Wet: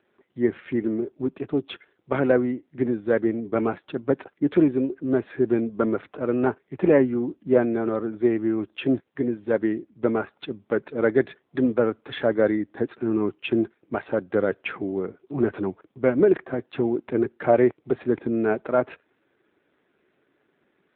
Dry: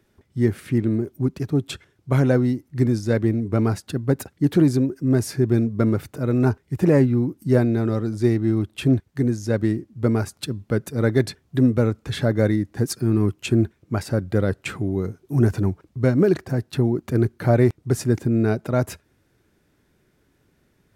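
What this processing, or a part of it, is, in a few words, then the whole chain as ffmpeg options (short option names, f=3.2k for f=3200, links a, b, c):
telephone: -af "highpass=360,lowpass=3.4k,volume=3.5dB" -ar 8000 -c:a libopencore_amrnb -b:a 7400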